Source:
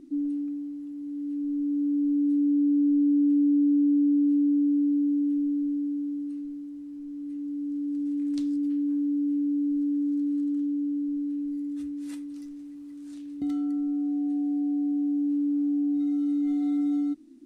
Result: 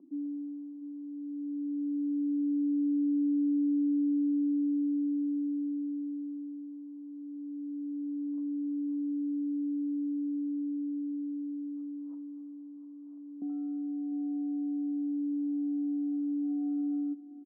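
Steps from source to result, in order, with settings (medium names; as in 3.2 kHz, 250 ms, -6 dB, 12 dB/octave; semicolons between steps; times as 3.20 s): Chebyshev band-pass 180–1100 Hz, order 4; delay 700 ms -14.5 dB; trim -7.5 dB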